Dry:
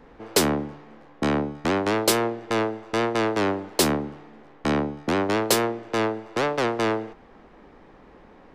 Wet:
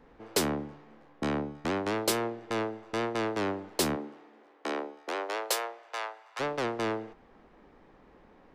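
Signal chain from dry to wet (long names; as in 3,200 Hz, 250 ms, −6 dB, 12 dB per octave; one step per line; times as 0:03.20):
0:03.95–0:06.39: high-pass filter 210 Hz → 840 Hz 24 dB per octave
level −7.5 dB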